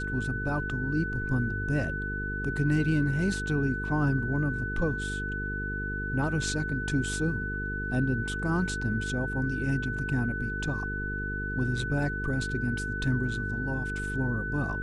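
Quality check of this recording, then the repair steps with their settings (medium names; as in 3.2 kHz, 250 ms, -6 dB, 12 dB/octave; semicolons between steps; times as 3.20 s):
buzz 50 Hz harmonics 9 -35 dBFS
whine 1.5 kHz -33 dBFS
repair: de-hum 50 Hz, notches 9; band-stop 1.5 kHz, Q 30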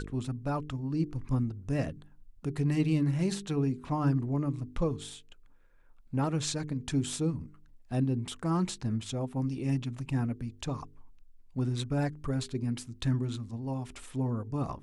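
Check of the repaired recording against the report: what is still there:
nothing left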